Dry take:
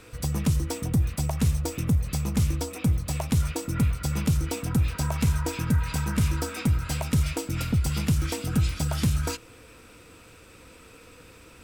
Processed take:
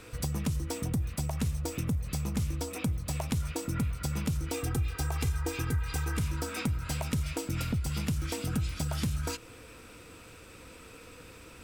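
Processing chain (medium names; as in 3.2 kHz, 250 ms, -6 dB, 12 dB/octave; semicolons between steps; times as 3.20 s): 4.54–6.19 s: comb 2.5 ms, depth 90%; compression 3:1, threshold -30 dBFS, peak gain reduction 11 dB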